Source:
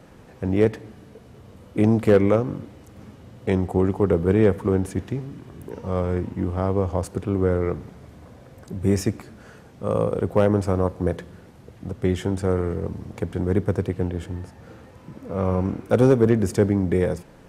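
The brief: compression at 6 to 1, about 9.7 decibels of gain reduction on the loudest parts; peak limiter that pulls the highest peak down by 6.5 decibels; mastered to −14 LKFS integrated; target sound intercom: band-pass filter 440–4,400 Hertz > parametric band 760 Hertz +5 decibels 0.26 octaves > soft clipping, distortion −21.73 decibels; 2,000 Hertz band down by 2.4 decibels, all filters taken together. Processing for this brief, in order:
parametric band 2,000 Hz −3 dB
downward compressor 6 to 1, threshold −22 dBFS
brickwall limiter −18.5 dBFS
band-pass filter 440–4,400 Hz
parametric band 760 Hz +5 dB 0.26 octaves
soft clipping −22.5 dBFS
level +23 dB

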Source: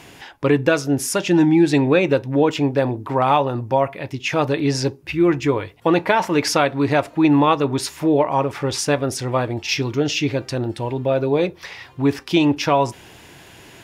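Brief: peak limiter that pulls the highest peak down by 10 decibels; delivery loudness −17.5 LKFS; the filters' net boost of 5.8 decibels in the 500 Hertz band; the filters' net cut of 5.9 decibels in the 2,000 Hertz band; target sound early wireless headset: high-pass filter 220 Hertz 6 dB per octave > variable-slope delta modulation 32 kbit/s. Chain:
parametric band 500 Hz +8.5 dB
parametric band 2,000 Hz −9 dB
brickwall limiter −8 dBFS
high-pass filter 220 Hz 6 dB per octave
variable-slope delta modulation 32 kbit/s
level +2.5 dB

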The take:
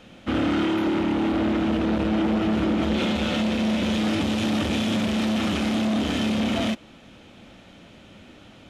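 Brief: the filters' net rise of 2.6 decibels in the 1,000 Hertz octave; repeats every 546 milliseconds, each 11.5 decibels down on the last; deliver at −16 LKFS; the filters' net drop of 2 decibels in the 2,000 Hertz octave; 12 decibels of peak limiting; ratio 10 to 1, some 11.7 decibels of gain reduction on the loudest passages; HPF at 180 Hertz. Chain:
high-pass filter 180 Hz
parametric band 1,000 Hz +4.5 dB
parametric band 2,000 Hz −4 dB
downward compressor 10 to 1, threshold −32 dBFS
brickwall limiter −35 dBFS
repeating echo 546 ms, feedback 27%, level −11.5 dB
level +26.5 dB

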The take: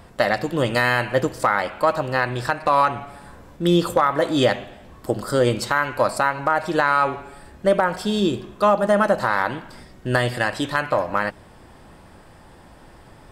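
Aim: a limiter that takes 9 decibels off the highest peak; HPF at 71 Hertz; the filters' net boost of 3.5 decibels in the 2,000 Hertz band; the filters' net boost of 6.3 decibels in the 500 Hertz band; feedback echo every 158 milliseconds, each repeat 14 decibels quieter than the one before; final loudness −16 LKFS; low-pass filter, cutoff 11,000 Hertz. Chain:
high-pass filter 71 Hz
low-pass filter 11,000 Hz
parametric band 500 Hz +7.5 dB
parametric band 2,000 Hz +4 dB
brickwall limiter −8.5 dBFS
repeating echo 158 ms, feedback 20%, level −14 dB
level +4.5 dB

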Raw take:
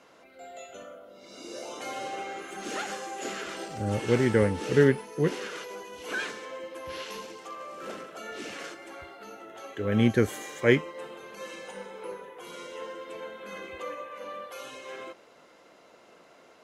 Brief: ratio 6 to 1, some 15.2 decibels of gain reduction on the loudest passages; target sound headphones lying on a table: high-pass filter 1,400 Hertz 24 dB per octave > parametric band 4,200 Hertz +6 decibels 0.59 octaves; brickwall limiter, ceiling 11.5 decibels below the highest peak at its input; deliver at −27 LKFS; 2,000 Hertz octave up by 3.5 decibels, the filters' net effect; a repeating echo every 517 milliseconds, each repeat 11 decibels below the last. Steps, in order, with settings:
parametric band 2,000 Hz +4.5 dB
downward compressor 6 to 1, threshold −31 dBFS
brickwall limiter −29.5 dBFS
high-pass filter 1,400 Hz 24 dB per octave
parametric band 4,200 Hz +6 dB 0.59 octaves
repeating echo 517 ms, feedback 28%, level −11 dB
level +15 dB

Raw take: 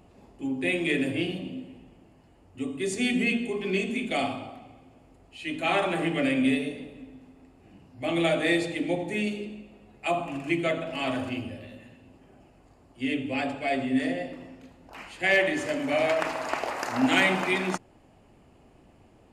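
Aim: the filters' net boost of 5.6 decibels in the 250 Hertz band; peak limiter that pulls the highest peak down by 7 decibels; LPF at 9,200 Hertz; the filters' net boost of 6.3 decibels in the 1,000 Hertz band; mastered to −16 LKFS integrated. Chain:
low-pass filter 9,200 Hz
parametric band 250 Hz +6 dB
parametric band 1,000 Hz +8.5 dB
level +8.5 dB
brickwall limiter −4 dBFS

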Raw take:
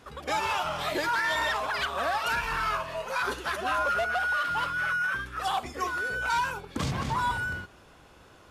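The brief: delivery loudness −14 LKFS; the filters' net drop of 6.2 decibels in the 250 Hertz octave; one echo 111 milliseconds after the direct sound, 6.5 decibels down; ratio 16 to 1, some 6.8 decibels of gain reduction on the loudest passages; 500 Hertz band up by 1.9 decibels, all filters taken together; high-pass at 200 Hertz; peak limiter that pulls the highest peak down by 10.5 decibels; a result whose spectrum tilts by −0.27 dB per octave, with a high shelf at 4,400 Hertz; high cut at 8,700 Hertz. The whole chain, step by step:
high-pass filter 200 Hz
low-pass filter 8,700 Hz
parametric band 250 Hz −8.5 dB
parametric band 500 Hz +4.5 dB
high-shelf EQ 4,400 Hz −4 dB
downward compressor 16 to 1, threshold −30 dBFS
brickwall limiter −32.5 dBFS
single-tap delay 111 ms −6.5 dB
level +24 dB

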